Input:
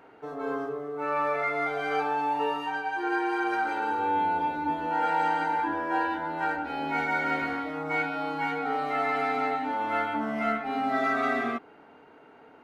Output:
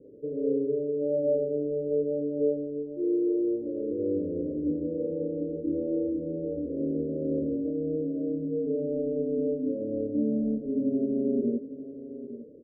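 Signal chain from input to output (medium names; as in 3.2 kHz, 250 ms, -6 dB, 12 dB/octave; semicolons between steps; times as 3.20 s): Chebyshev low-pass 590 Hz, order 10; delay 856 ms -13.5 dB; trim +6.5 dB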